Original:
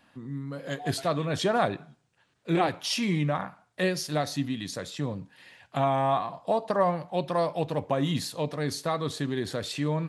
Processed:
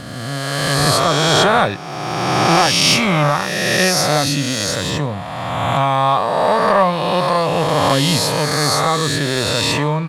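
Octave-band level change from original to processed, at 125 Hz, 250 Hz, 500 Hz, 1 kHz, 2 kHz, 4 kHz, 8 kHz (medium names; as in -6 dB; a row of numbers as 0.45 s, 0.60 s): +12.0 dB, +10.0 dB, +11.0 dB, +14.0 dB, +17.5 dB, +18.5 dB, +19.0 dB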